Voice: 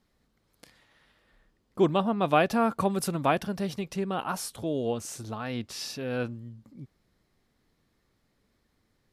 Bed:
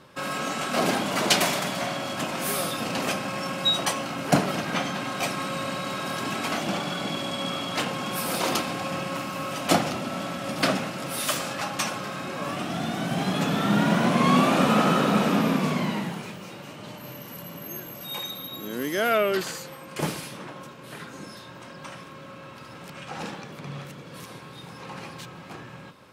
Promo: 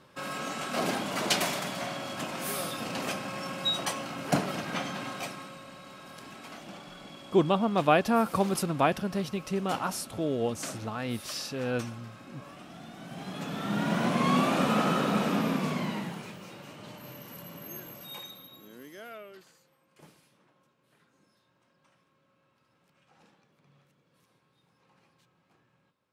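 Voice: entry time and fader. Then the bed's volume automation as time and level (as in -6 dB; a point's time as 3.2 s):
5.55 s, 0.0 dB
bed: 5.08 s -6 dB
5.62 s -17 dB
12.93 s -17 dB
14.02 s -5.5 dB
17.9 s -5.5 dB
19.5 s -27.5 dB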